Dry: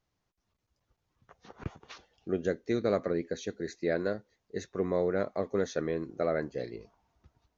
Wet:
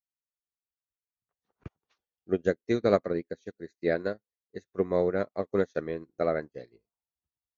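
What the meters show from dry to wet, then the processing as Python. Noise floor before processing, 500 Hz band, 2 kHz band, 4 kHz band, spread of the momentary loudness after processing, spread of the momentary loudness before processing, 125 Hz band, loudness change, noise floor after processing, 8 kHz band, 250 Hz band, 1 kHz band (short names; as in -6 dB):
-82 dBFS, +2.5 dB, +2.0 dB, -1.5 dB, 18 LU, 15 LU, +1.0 dB, +3.0 dB, under -85 dBFS, n/a, +1.5 dB, +3.0 dB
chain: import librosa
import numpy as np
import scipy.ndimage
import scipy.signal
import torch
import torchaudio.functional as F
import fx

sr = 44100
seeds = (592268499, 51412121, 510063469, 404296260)

y = fx.upward_expand(x, sr, threshold_db=-51.0, expansion=2.5)
y = y * librosa.db_to_amplitude(7.0)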